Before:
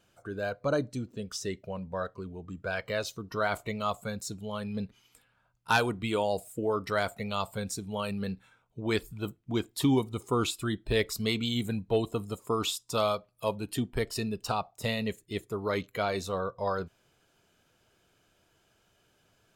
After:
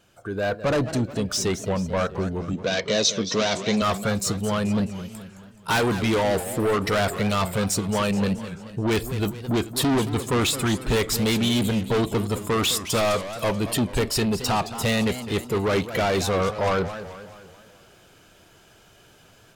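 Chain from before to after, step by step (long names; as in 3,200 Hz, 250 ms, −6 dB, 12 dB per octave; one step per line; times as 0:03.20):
automatic gain control gain up to 7.5 dB
soft clipping −26 dBFS, distortion −6 dB
0:02.53–0:03.82: loudspeaker in its box 160–7,200 Hz, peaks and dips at 220 Hz +5 dB, 480 Hz +3 dB, 820 Hz −6 dB, 1,400 Hz −8 dB, 3,800 Hz +8 dB, 6,000 Hz +10 dB
feedback echo with a swinging delay time 215 ms, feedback 50%, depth 219 cents, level −12 dB
level +7 dB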